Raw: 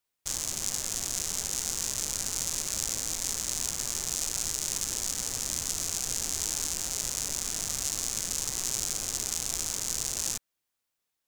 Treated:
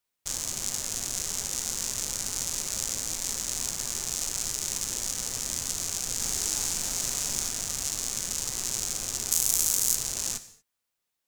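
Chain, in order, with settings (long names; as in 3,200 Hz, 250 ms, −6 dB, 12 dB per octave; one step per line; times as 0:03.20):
0:06.16–0:07.49: double-tracking delay 41 ms −2.5 dB
0:09.31–0:09.95: parametric band 15,000 Hz +15 dB 1.2 octaves
reverb whose tail is shaped and stops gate 260 ms falling, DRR 10.5 dB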